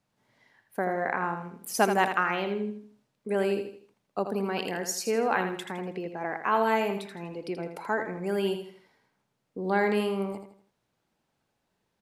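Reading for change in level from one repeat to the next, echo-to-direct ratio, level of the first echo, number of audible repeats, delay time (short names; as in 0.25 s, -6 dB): -8.5 dB, -7.5 dB, -8.0 dB, 4, 81 ms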